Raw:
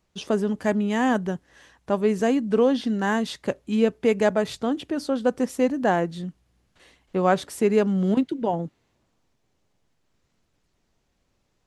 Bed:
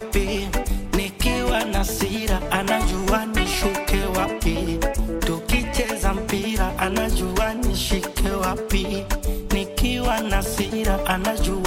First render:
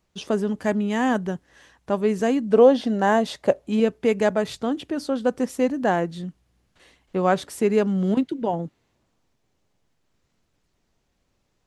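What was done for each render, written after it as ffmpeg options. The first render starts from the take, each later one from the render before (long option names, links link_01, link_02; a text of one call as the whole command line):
ffmpeg -i in.wav -filter_complex "[0:a]asettb=1/sr,asplit=3[link_01][link_02][link_03];[link_01]atrim=end=2.534[link_04];[link_02]atrim=start=2.53:end=3.8,asetpts=PTS-STARTPTS,afade=type=in:duration=0.004:curve=qsin,afade=type=out:start_time=1.266:duration=0.004:curve=qsin,equalizer=frequency=640:width=1.5:gain=11[link_05];[link_03]atrim=start=3.796[link_06];[link_04][link_05]acrossfade=duration=0.004:curve1=hsin:curve2=qsin[link_07];[link_07][link_06]acrossfade=duration=0.004:curve1=qsin:curve2=hsin" out.wav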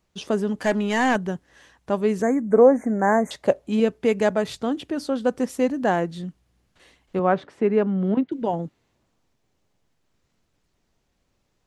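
ffmpeg -i in.wav -filter_complex "[0:a]asettb=1/sr,asplit=3[link_01][link_02][link_03];[link_01]atrim=end=0.614[link_04];[link_02]atrim=start=0.61:end=1.16,asetpts=PTS-STARTPTS,afade=type=in:duration=0.004:curve=qsin,afade=type=out:start_time=0.546:duration=0.004:curve=qsin,asplit=2[link_05][link_06];[link_06]highpass=frequency=720:poles=1,volume=14dB,asoftclip=type=tanh:threshold=-11.5dB[link_07];[link_05][link_07]amix=inputs=2:normalize=0,lowpass=frequency=6900:poles=1,volume=-6dB[link_08];[link_03]atrim=start=1.156[link_09];[link_04][link_08]acrossfade=duration=0.004:curve1=hsin:curve2=qsin[link_10];[link_10][link_09]acrossfade=duration=0.004:curve1=qsin:curve2=hsin,asettb=1/sr,asplit=3[link_11][link_12][link_13];[link_11]atrim=end=2.224[link_14];[link_12]atrim=start=2.22:end=3.31,asetpts=PTS-STARTPTS,afade=type=in:duration=0.004:curve=qsin,afade=type=out:start_time=1.086:duration=0.004:curve=qsin,asuperstop=centerf=3800:order=20:qfactor=0.95[link_15];[link_13]atrim=start=3.306[link_16];[link_14][link_15]acrossfade=duration=0.004:curve1=hsin:curve2=qsin[link_17];[link_17][link_16]acrossfade=duration=0.004:curve1=qsin:curve2=hsin,asettb=1/sr,asplit=3[link_18][link_19][link_20];[link_18]atrim=end=7.194[link_21];[link_19]atrim=start=7.19:end=8.32,asetpts=PTS-STARTPTS,afade=type=in:duration=0.004:curve=qsin,afade=type=out:start_time=1.126:duration=0.004:curve=qsin,highpass=120,lowpass=2100[link_22];[link_20]atrim=start=8.316[link_23];[link_21][link_22]acrossfade=duration=0.004:curve1=hsin:curve2=qsin[link_24];[link_24][link_23]acrossfade=duration=0.004:curve1=qsin:curve2=hsin" out.wav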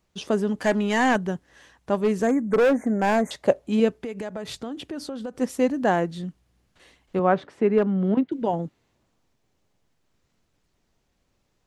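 ffmpeg -i in.wav -filter_complex "[0:a]asplit=3[link_01][link_02][link_03];[link_01]afade=type=out:start_time=1.94:duration=0.02[link_04];[link_02]volume=15.5dB,asoftclip=hard,volume=-15.5dB,afade=type=in:start_time=1.94:duration=0.02,afade=type=out:start_time=3.37:duration=0.02[link_05];[link_03]afade=type=in:start_time=3.37:duration=0.02[link_06];[link_04][link_05][link_06]amix=inputs=3:normalize=0,asplit=3[link_07][link_08][link_09];[link_07]afade=type=out:start_time=3.93:duration=0.02[link_10];[link_08]acompressor=threshold=-28dB:ratio=12:attack=3.2:release=140:knee=1:detection=peak,afade=type=in:start_time=3.93:duration=0.02,afade=type=out:start_time=5.4:duration=0.02[link_11];[link_09]afade=type=in:start_time=5.4:duration=0.02[link_12];[link_10][link_11][link_12]amix=inputs=3:normalize=0,asettb=1/sr,asplit=3[link_13][link_14][link_15];[link_13]atrim=end=7.784[link_16];[link_14]atrim=start=7.78:end=8.36,asetpts=PTS-STARTPTS,afade=type=in:duration=0.004:curve=qsin,afade=type=out:start_time=0.576:duration=0.004:curve=qsin,asoftclip=type=hard:threshold=-13dB[link_17];[link_15]atrim=start=8.356[link_18];[link_16][link_17]acrossfade=duration=0.004:curve1=hsin:curve2=qsin[link_19];[link_19][link_18]acrossfade=duration=0.004:curve1=qsin:curve2=hsin" out.wav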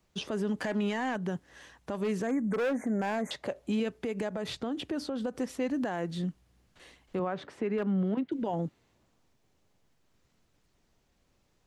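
ffmpeg -i in.wav -filter_complex "[0:a]acrossover=split=83|1300|4600[link_01][link_02][link_03][link_04];[link_01]acompressor=threshold=-59dB:ratio=4[link_05];[link_02]acompressor=threshold=-23dB:ratio=4[link_06];[link_03]acompressor=threshold=-32dB:ratio=4[link_07];[link_04]acompressor=threshold=-52dB:ratio=4[link_08];[link_05][link_06][link_07][link_08]amix=inputs=4:normalize=0,alimiter=limit=-23dB:level=0:latency=1:release=74" out.wav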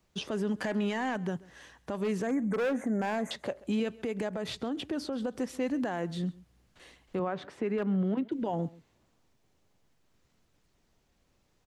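ffmpeg -i in.wav -af "aecho=1:1:134:0.0794" out.wav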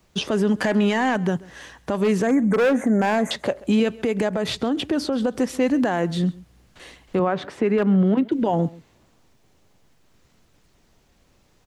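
ffmpeg -i in.wav -af "volume=11dB" out.wav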